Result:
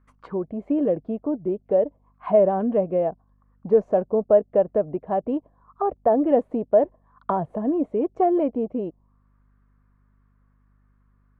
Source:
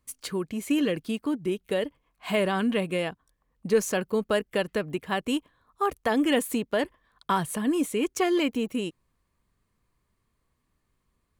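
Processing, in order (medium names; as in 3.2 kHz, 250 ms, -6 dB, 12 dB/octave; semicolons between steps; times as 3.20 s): hum 50 Hz, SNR 33 dB; touch-sensitive low-pass 660–1500 Hz down, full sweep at -29.5 dBFS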